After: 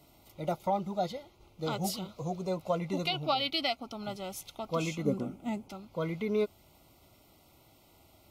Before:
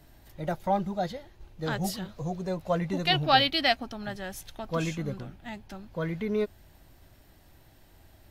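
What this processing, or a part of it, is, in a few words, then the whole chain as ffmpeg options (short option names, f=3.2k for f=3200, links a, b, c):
PA system with an anti-feedback notch: -filter_complex "[0:a]highpass=f=190:p=1,asuperstop=centerf=1700:order=12:qfactor=3.2,alimiter=limit=-19.5dB:level=0:latency=1:release=275,asettb=1/sr,asplit=3[a][b][c];[a]atrim=end=5.054[d];[b]atrim=start=5.05:end=5.69,asetpts=PTS-STARTPTS,afade=t=in:d=0.004:c=qsin,afade=t=out:st=0.636:d=0.004:c=qsin,equalizer=f=250:t=o:w=1:g=11,equalizer=f=500:t=o:w=1:g=5,equalizer=f=4k:t=o:w=1:g=-7,equalizer=f=8k:t=o:w=1:g=6[e];[c]atrim=start=5.686[f];[d][e]acrossfade=d=0.004:c1=hsin:c2=qsin[g];[g][f]acrossfade=d=0.004:c1=qsin:c2=hsin"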